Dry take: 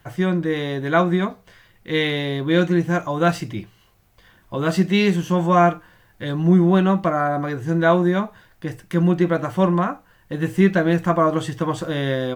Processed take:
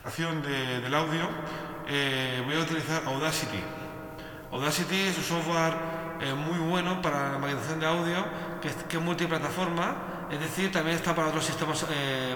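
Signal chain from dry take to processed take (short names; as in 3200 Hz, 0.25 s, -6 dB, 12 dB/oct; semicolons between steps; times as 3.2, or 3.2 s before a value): gliding pitch shift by -2 st ending unshifted; digital reverb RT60 3.8 s, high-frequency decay 0.45×, pre-delay 25 ms, DRR 14.5 dB; spectral compressor 2:1; gain -8.5 dB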